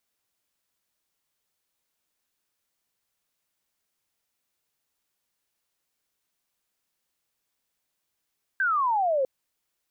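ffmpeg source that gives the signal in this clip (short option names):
-f lavfi -i "aevalsrc='0.0891*clip(t/0.002,0,1)*clip((0.65-t)/0.002,0,1)*sin(2*PI*1600*0.65/log(510/1600)*(exp(log(510/1600)*t/0.65)-1))':d=0.65:s=44100"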